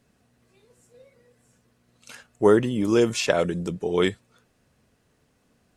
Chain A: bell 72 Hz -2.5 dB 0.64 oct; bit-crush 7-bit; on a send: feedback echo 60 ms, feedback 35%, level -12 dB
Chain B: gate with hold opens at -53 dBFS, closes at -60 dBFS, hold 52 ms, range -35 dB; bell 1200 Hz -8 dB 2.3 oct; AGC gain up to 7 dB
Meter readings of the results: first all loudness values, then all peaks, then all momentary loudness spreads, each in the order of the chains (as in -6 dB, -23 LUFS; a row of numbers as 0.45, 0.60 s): -22.5, -19.5 LUFS; -5.0, -3.0 dBFS; 8, 7 LU